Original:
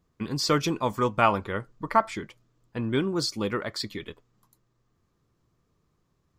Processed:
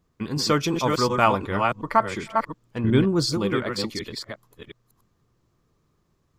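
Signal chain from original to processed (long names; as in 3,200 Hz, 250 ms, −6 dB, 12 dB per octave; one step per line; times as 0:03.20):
delay that plays each chunk backwards 363 ms, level −4 dB
0:02.84–0:03.38: low-shelf EQ 250 Hz +9.5 dB
level +2 dB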